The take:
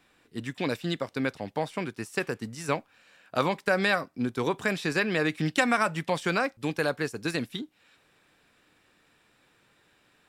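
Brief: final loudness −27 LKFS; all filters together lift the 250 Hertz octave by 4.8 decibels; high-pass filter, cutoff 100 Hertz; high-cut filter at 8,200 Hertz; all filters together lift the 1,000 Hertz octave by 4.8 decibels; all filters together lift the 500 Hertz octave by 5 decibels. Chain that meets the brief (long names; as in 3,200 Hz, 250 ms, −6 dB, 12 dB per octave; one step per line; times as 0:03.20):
high-pass filter 100 Hz
low-pass filter 8,200 Hz
parametric band 250 Hz +5 dB
parametric band 500 Hz +3.5 dB
parametric band 1,000 Hz +5 dB
level −1.5 dB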